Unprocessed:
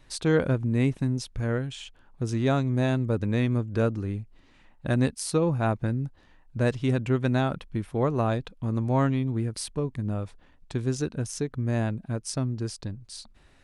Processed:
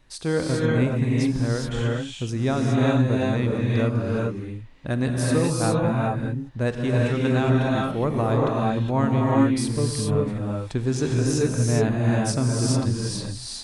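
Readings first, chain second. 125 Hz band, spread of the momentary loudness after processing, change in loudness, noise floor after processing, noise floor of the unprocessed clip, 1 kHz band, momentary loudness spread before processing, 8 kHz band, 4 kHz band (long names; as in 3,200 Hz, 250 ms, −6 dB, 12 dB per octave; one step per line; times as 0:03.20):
+4.5 dB, 7 LU, +4.5 dB, −37 dBFS, −58 dBFS, +5.5 dB, 12 LU, +6.5 dB, +6.0 dB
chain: speech leveller 2 s
reverb whose tail is shaped and stops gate 440 ms rising, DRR −3.5 dB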